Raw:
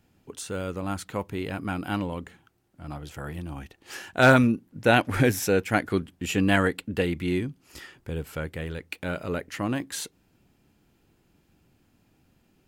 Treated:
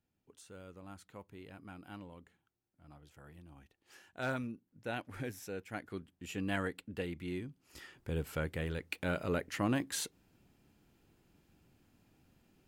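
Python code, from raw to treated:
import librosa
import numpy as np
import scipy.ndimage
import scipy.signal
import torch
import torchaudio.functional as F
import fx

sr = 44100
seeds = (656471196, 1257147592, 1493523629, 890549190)

y = fx.gain(x, sr, db=fx.line((5.52, -20.0), (6.62, -13.5), (7.44, -13.5), (8.16, -4.0)))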